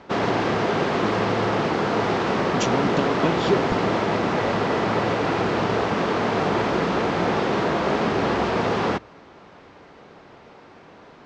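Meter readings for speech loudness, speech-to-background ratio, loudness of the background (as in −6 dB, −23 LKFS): −26.5 LKFS, −4.0 dB, −22.5 LKFS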